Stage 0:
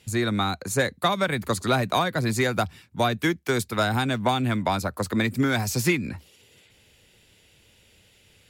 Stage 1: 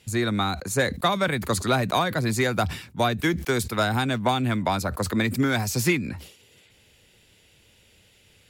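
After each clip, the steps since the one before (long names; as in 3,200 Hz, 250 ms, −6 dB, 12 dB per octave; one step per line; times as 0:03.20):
level that may fall only so fast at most 100 dB per second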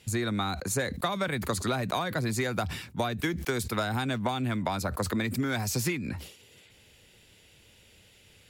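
downward compressor, threshold −26 dBFS, peak gain reduction 10 dB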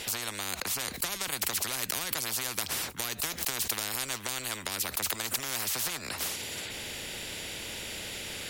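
every bin compressed towards the loudest bin 10 to 1
level +5 dB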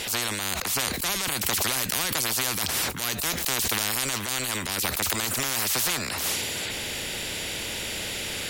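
transient designer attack −9 dB, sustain +6 dB
level +7 dB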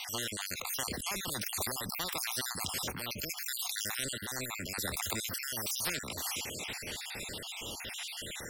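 time-frequency cells dropped at random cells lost 56%
level −6 dB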